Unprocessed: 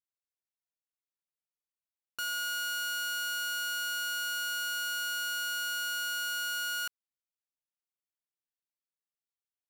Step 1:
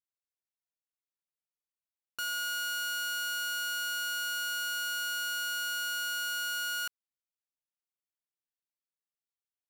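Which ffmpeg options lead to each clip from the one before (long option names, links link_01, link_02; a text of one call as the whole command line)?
ffmpeg -i in.wav -af anull out.wav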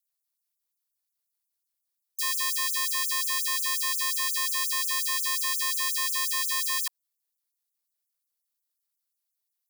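ffmpeg -i in.wav -af "aeval=exprs='val(0)*sin(2*PI*380*n/s)':channel_layout=same,aexciter=amount=2.6:drive=3.9:freq=3900,afftfilt=real='re*gte(b*sr/1024,260*pow(6200/260,0.5+0.5*sin(2*PI*5.6*pts/sr)))':imag='im*gte(b*sr/1024,260*pow(6200/260,0.5+0.5*sin(2*PI*5.6*pts/sr)))':win_size=1024:overlap=0.75,volume=5.5dB" out.wav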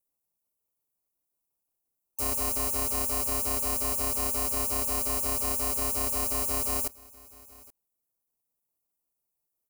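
ffmpeg -i in.wav -filter_complex "[0:a]acrossover=split=1100|5800[link_01][link_02][link_03];[link_02]acrusher=samples=25:mix=1:aa=0.000001[link_04];[link_01][link_04][link_03]amix=inputs=3:normalize=0,aecho=1:1:826:0.075" out.wav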